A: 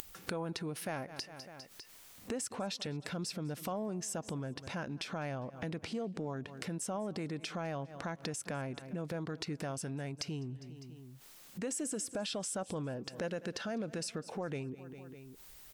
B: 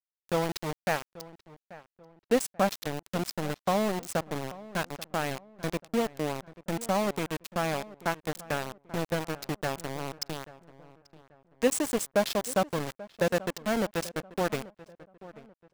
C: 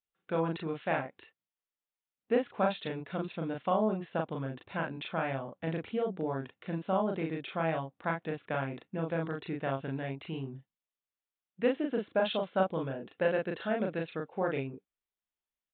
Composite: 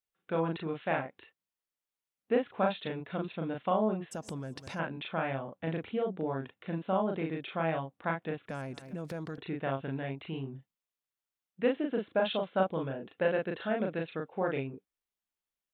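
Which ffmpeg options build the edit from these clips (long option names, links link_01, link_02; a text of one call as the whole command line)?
ffmpeg -i take0.wav -i take1.wav -i take2.wav -filter_complex "[0:a]asplit=2[link_01][link_02];[2:a]asplit=3[link_03][link_04][link_05];[link_03]atrim=end=4.13[link_06];[link_01]atrim=start=4.11:end=4.8[link_07];[link_04]atrim=start=4.78:end=8.492[link_08];[link_02]atrim=start=8.488:end=9.382[link_09];[link_05]atrim=start=9.378[link_10];[link_06][link_07]acrossfade=duration=0.02:curve1=tri:curve2=tri[link_11];[link_11][link_08]acrossfade=duration=0.02:curve1=tri:curve2=tri[link_12];[link_12][link_09]acrossfade=duration=0.004:curve1=hsin:curve2=hsin[link_13];[link_13][link_10]acrossfade=duration=0.004:curve1=hsin:curve2=hsin" out.wav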